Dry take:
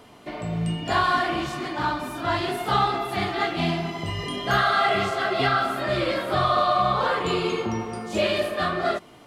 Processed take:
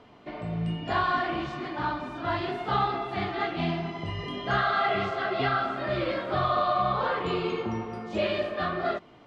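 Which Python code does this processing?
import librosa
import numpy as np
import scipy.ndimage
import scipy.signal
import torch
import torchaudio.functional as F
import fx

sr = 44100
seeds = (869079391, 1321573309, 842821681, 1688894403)

y = fx.air_absorb(x, sr, metres=170.0)
y = y * librosa.db_to_amplitude(-3.5)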